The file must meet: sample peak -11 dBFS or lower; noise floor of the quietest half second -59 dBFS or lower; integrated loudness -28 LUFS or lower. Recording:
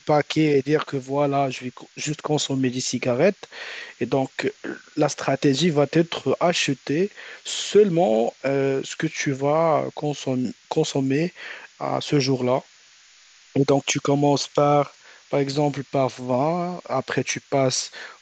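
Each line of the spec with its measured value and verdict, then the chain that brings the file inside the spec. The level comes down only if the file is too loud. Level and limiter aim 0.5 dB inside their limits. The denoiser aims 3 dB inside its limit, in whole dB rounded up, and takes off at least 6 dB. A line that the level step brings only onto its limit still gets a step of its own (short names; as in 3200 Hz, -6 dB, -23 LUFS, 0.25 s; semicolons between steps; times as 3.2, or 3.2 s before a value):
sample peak -5.5 dBFS: fail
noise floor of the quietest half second -53 dBFS: fail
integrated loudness -22.5 LUFS: fail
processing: denoiser 6 dB, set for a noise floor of -53 dBFS; gain -6 dB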